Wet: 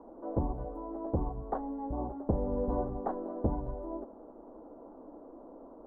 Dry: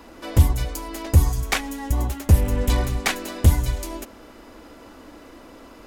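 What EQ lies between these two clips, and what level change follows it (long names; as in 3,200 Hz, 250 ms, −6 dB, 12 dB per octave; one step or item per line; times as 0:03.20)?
inverse Chebyshev low-pass filter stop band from 2,200 Hz, stop band 50 dB
parametric band 81 Hz −14.5 dB 1.4 octaves
low-shelf EQ 190 Hz −7 dB
−1.5 dB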